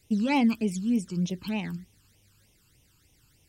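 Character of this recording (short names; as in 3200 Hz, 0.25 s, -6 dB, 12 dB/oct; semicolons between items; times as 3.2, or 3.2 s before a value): phasing stages 12, 3.3 Hz, lowest notch 610–1500 Hz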